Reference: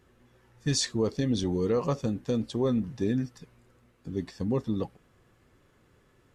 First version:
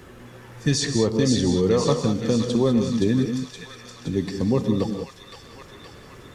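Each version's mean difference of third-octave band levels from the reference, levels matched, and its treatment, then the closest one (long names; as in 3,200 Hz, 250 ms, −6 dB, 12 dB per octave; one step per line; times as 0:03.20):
8.0 dB: on a send: delay with a high-pass on its return 520 ms, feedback 51%, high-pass 1,900 Hz, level −5 dB
on the sum: reverb whose tail is shaped and stops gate 220 ms rising, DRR 7 dB
multiband upward and downward compressor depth 40%
level +6.5 dB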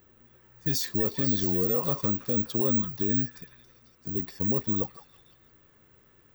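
4.0 dB: brickwall limiter −21.5 dBFS, peak gain reduction 6.5 dB
on a send: echo through a band-pass that steps 166 ms, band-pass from 1,400 Hz, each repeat 0.7 octaves, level −3.5 dB
on the sum: bad sample-rate conversion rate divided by 2×, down filtered, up zero stuff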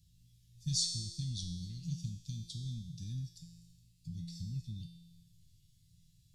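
13.0 dB: in parallel at +2.5 dB: downward compressor, threshold −41 dBFS, peak gain reduction 17.5 dB
on the sum: elliptic band-stop filter 140–4,000 Hz, stop band 70 dB
tuned comb filter 170 Hz, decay 1.2 s, mix 90%
level +11.5 dB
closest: second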